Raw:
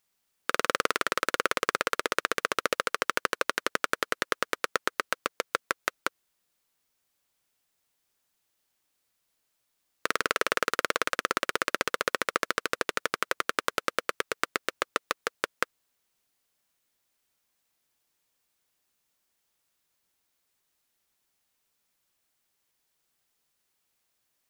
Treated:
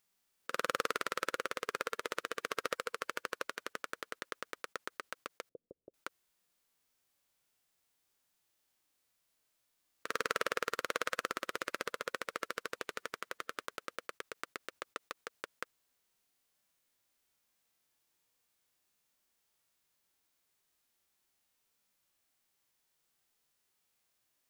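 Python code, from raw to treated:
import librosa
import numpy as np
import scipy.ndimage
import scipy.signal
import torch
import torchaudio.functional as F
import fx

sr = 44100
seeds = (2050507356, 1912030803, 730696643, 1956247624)

y = fx.hpss(x, sr, part='percussive', gain_db=-17)
y = fx.steep_lowpass(y, sr, hz=540.0, slope=36, at=(5.49, 5.94))
y = y * 10.0 ** (2.5 / 20.0)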